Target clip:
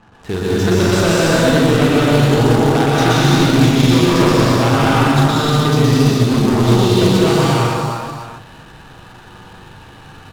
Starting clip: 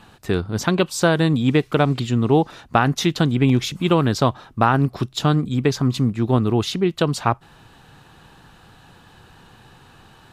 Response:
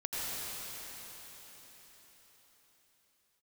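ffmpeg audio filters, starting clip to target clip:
-filter_complex "[0:a]aecho=1:1:42|117|308|344|349|631:0.596|0.562|0.266|0.1|0.422|0.224,aeval=exprs='0.891*sin(PI/2*2.82*val(0)/0.891)':channel_layout=same[link_01];[1:a]atrim=start_sample=2205,afade=type=out:start_time=0.35:duration=0.01,atrim=end_sample=15876,asetrate=29547,aresample=44100[link_02];[link_01][link_02]afir=irnorm=-1:irlink=0,acrusher=bits=4:mode=log:mix=0:aa=0.000001,adynamicsmooth=sensitivity=8:basefreq=510,volume=-12.5dB"

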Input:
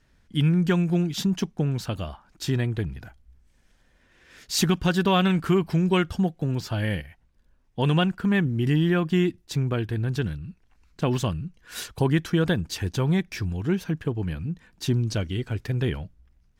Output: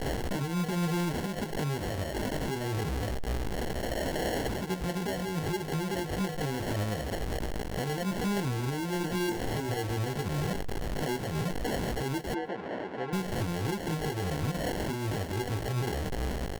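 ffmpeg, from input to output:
ffmpeg -i in.wav -filter_complex "[0:a]aeval=exprs='val(0)+0.5*0.0501*sgn(val(0))':channel_layout=same,equalizer=frequency=470:width_type=o:width=1.1:gain=10.5,acompressor=threshold=-21dB:ratio=6,alimiter=limit=-23.5dB:level=0:latency=1:release=143,flanger=delay=15:depth=5.5:speed=0.24,acrusher=samples=36:mix=1:aa=0.000001,asoftclip=type=hard:threshold=-27dB,asettb=1/sr,asplit=3[link_01][link_02][link_03];[link_01]atrim=end=8.984[link_04];[link_02]atrim=start=8.98:end=9.77,asetpts=PTS-STARTPTS,afade=type=in:duration=0.004:curve=qsin,afade=type=out:start_time=0.786:duration=0.004:curve=qsin,asplit=2[link_05][link_06];[link_06]adelay=26,volume=-5.5dB[link_07];[link_05][link_07]amix=inputs=2:normalize=0,atrim=end_sample=34839[link_08];[link_03]atrim=start=9.766[link_09];[link_04][link_08]acrossfade=duration=0.004:curve1=hsin:curve2=qsin[link_10];[link_10][link_09]acrossfade=duration=0.004:curve1=qsin:curve2=hsin,asettb=1/sr,asplit=3[link_11][link_12][link_13];[link_11]atrim=end=12.344[link_14];[link_12]atrim=start=12.34:end=13.13,asetpts=PTS-STARTPTS,afade=type=in:duration=0.004:curve=qsin,afade=type=out:start_time=0.786:duration=0.004:curve=qsin,highpass=280,lowpass=2100[link_15];[link_13]atrim=start=13.126[link_16];[link_14][link_15]acrossfade=duration=0.004:curve1=hsin:curve2=qsin[link_17];[link_17][link_16]acrossfade=duration=0.004:curve1=qsin:curve2=hsin,asplit=2[link_18][link_19];[link_19]adelay=145.8,volume=-27dB,highshelf=frequency=4000:gain=-3.28[link_20];[link_18][link_20]amix=inputs=2:normalize=0,volume=2dB" -ar 48000 -c:a aac -b:a 160k out.aac

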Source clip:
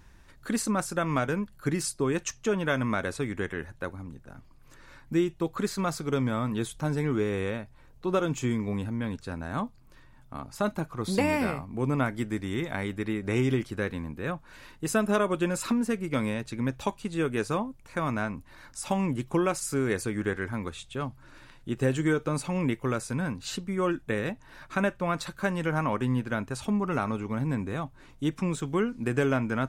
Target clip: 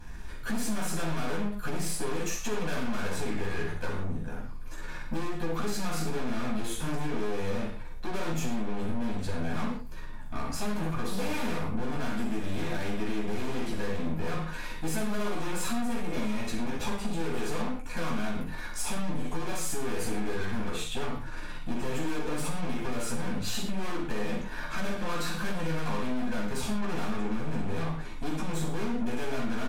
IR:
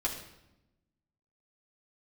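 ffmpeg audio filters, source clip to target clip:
-filter_complex "[0:a]aecho=1:1:43|63:0.473|0.282,aeval=exprs='(tanh(112*val(0)+0.5)-tanh(0.5))/112':channel_layout=same,asettb=1/sr,asplit=3[link_01][link_02][link_03];[link_01]atrim=end=18.964[link_04];[link_02]atrim=start=18.96:end=19.43,asetpts=PTS-STARTPTS,afade=type=in:duration=0.004:curve=qsin,afade=type=out:start_time=0.466:duration=0.004:curve=qsin,aecho=1:1:6.7:0.65,atrim=end_sample=20727[link_05];[link_03]atrim=start=19.426[link_06];[link_04][link_05]acrossfade=duration=0.004:curve1=hsin:curve2=qsin[link_07];[link_07][link_06]acrossfade=duration=0.004:curve1=qsin:curve2=hsin[link_08];[1:a]atrim=start_sample=2205,atrim=end_sample=4410,asetrate=31311,aresample=44100[link_09];[link_08][link_09]afir=irnorm=-1:irlink=0,acompressor=threshold=-28dB:ratio=6,volume=4.5dB"

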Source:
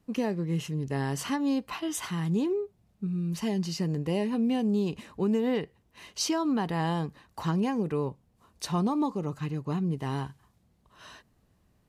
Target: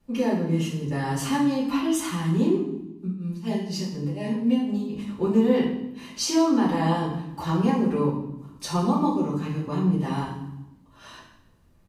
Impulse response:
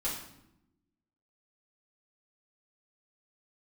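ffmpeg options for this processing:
-filter_complex "[0:a]asettb=1/sr,asplit=3[link_01][link_02][link_03];[link_01]atrim=end=2.544[link_04];[link_02]atrim=start=2.54:end=5.08,asetpts=PTS-STARTPTS,afade=type=in:duration=0.004:curve=qsin,afade=type=out:start_time=2.536:duration=0.004:curve=qsin,tremolo=f=4.1:d=0.96[link_05];[link_03]atrim=start=5.076[link_06];[link_04][link_05]acrossfade=duration=0.004:curve1=hsin:curve2=qsin[link_07];[link_07][link_06]acrossfade=duration=0.004:curve1=qsin:curve2=hsin,aecho=1:1:158|316|474:0.1|0.035|0.0123[link_08];[1:a]atrim=start_sample=2205[link_09];[link_08][link_09]afir=irnorm=-1:irlink=0"

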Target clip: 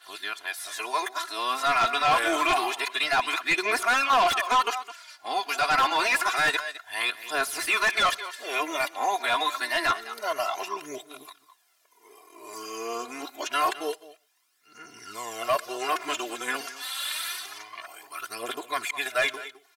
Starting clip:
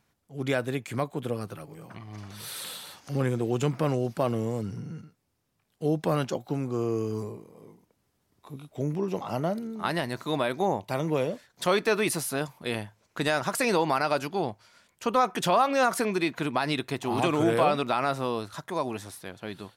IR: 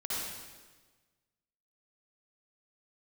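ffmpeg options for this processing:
-filter_complex "[0:a]areverse,highpass=1200,aecho=1:1:2.9:0.77,asplit=2[link_01][link_02];[link_02]adelay=209.9,volume=-16dB,highshelf=frequency=4000:gain=-4.72[link_03];[link_01][link_03]amix=inputs=2:normalize=0,aphaser=in_gain=1:out_gain=1:delay=4.4:decay=0.48:speed=0.27:type=triangular,aeval=exprs='0.237*sin(PI/2*2.82*val(0)/0.237)':channel_layout=same,asplit=2[link_04][link_05];[1:a]atrim=start_sample=2205,atrim=end_sample=3528,adelay=61[link_06];[link_05][link_06]afir=irnorm=-1:irlink=0,volume=-24.5dB[link_07];[link_04][link_07]amix=inputs=2:normalize=0,acrossover=split=3200[link_08][link_09];[link_09]acompressor=threshold=-29dB:ratio=4:attack=1:release=60[link_10];[link_08][link_10]amix=inputs=2:normalize=0,volume=-4dB"

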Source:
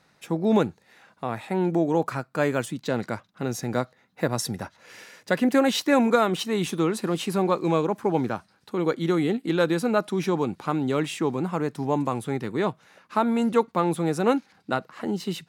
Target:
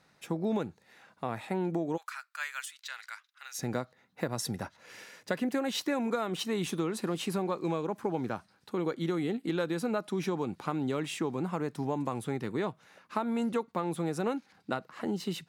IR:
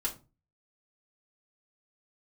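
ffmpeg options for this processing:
-filter_complex "[0:a]asplit=3[link_01][link_02][link_03];[link_01]afade=type=out:start_time=1.96:duration=0.02[link_04];[link_02]highpass=frequency=1400:width=0.5412,highpass=frequency=1400:width=1.3066,afade=type=in:start_time=1.96:duration=0.02,afade=type=out:start_time=3.58:duration=0.02[link_05];[link_03]afade=type=in:start_time=3.58:duration=0.02[link_06];[link_04][link_05][link_06]amix=inputs=3:normalize=0,acompressor=threshold=-24dB:ratio=6,volume=-3.5dB"

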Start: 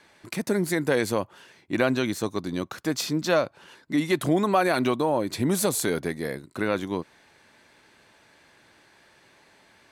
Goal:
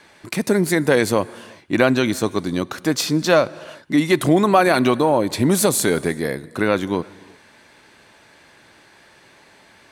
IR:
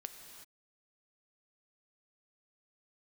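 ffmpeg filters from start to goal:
-filter_complex "[0:a]asplit=2[link_01][link_02];[link_02]equalizer=frequency=9300:width=5:gain=12.5[link_03];[1:a]atrim=start_sample=2205,highshelf=frequency=9100:gain=-9[link_04];[link_03][link_04]afir=irnorm=-1:irlink=0,volume=-9dB[link_05];[link_01][link_05]amix=inputs=2:normalize=0,volume=5.5dB"

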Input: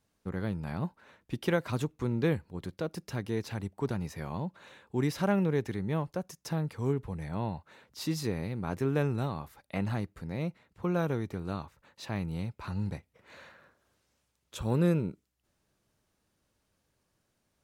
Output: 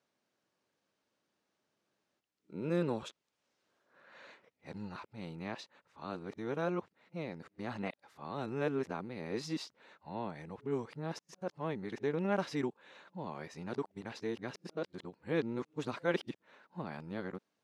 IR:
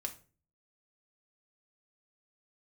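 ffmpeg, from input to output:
-af "areverse,highpass=240,lowpass=5800,volume=-3dB"

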